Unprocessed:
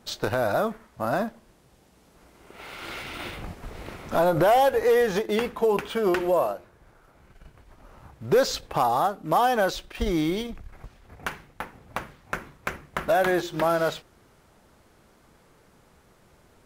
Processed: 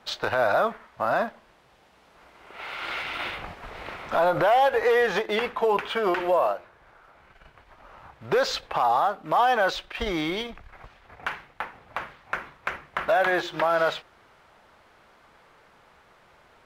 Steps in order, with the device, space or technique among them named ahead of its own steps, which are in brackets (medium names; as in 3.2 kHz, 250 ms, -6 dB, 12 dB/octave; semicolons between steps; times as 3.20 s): DJ mixer with the lows and highs turned down (three-band isolator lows -13 dB, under 580 Hz, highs -15 dB, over 4.1 kHz; peak limiter -20 dBFS, peak gain reduction 7 dB); trim +6.5 dB